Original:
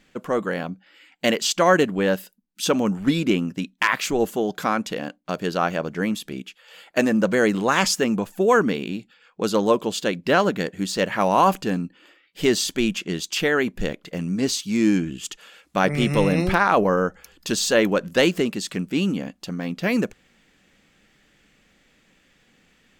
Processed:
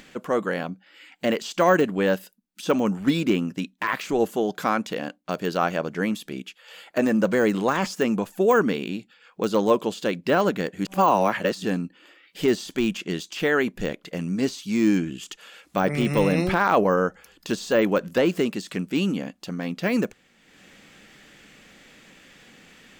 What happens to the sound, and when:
10.85–11.64 s: reverse
whole clip: de-esser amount 75%; bass shelf 85 Hz -10 dB; upward compressor, threshold -40 dBFS

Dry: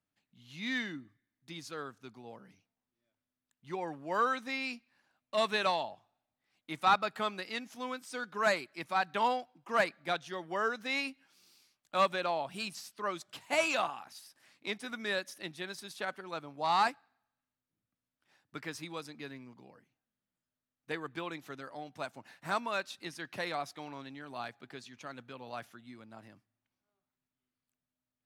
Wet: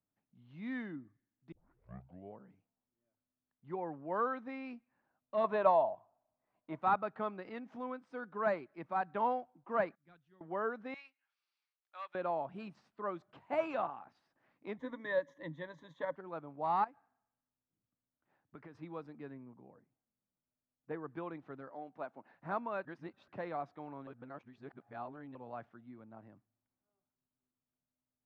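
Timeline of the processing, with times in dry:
1.52 s: tape start 0.87 s
5.44–6.81 s: small resonant body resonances 650/980 Hz, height 12 dB, ringing for 25 ms
7.38–7.99 s: swell ahead of each attack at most 120 dB/s
9.95–10.41 s: amplifier tone stack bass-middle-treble 6-0-2
10.94–12.15 s: Bessel high-pass 2.6 kHz
14.77–16.16 s: rippled EQ curve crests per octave 1.1, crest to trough 17 dB
16.84–18.75 s: compression 8:1, threshold -43 dBFS
19.34–21.10 s: treble shelf 3.3 kHz -10.5 dB
21.70–22.34 s: high-pass 230 Hz
22.85–23.28 s: reverse
24.07–25.35 s: reverse
whole clip: low-pass 1.1 kHz 12 dB/octave; trim -1.5 dB

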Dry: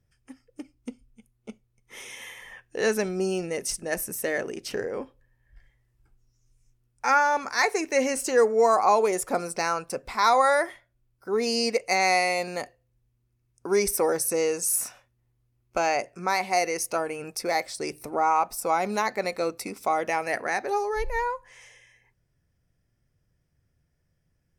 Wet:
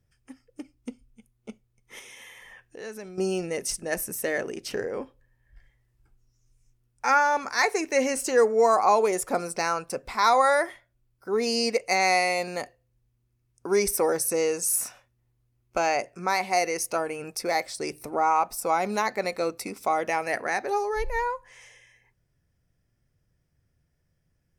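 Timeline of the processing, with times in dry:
1.99–3.18 s: compression 2:1, threshold -47 dBFS

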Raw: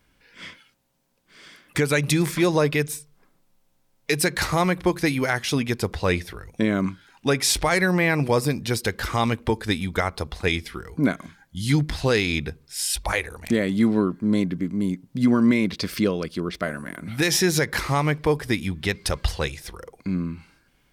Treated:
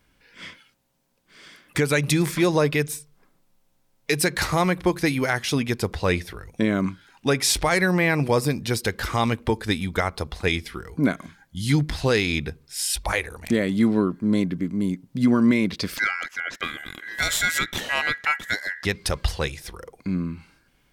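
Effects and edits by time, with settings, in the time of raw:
15.97–18.85 s: ring modulator 1.8 kHz

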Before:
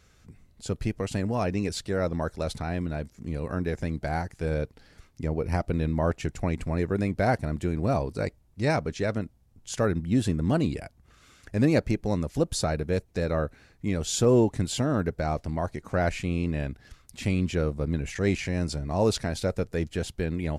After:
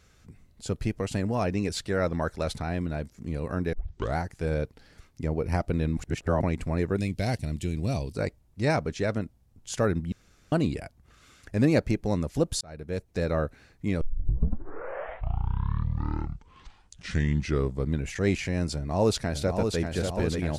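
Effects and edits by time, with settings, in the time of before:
1.69–2.54 s: dynamic bell 1.8 kHz, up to +4 dB, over -45 dBFS, Q 0.86
3.73 s: tape start 0.44 s
5.97–6.42 s: reverse
6.98–8.15 s: FFT filter 120 Hz 0 dB, 1.4 kHz -12 dB, 2.8 kHz +5 dB
10.12–10.52 s: room tone
12.61–13.21 s: fade in
14.01 s: tape start 4.09 s
18.75–19.80 s: echo throw 590 ms, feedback 70%, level -5 dB

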